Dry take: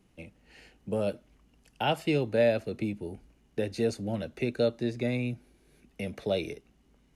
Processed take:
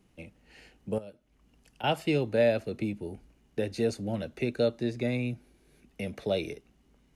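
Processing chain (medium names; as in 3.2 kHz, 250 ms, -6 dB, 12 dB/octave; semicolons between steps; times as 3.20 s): 0.98–1.84 s: compression 3:1, threshold -48 dBFS, peak gain reduction 17 dB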